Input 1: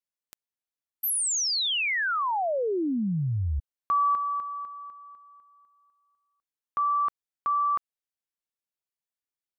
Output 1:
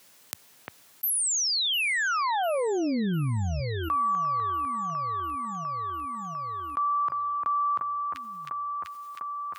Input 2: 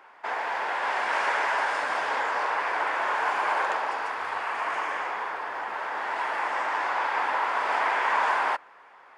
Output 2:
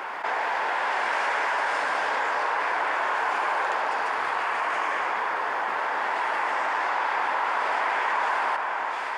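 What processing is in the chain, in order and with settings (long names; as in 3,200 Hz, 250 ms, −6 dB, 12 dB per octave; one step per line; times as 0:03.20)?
high-pass filter 93 Hz 24 dB per octave
delay that swaps between a low-pass and a high-pass 350 ms, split 2,300 Hz, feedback 70%, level −12 dB
envelope flattener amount 70%
level −2.5 dB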